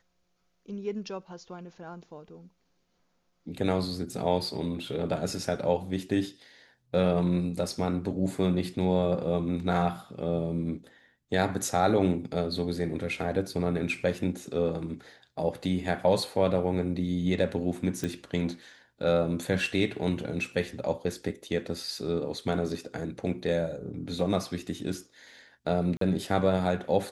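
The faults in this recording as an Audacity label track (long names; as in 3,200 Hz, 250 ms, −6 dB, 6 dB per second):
18.040000	18.040000	click −18 dBFS
25.970000	26.010000	drop-out 43 ms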